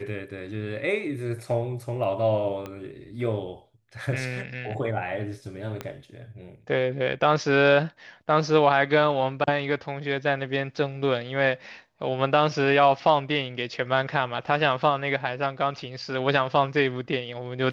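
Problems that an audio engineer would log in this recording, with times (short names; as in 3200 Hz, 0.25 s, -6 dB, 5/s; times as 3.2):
2.66 pop -21 dBFS
5.81 pop -17 dBFS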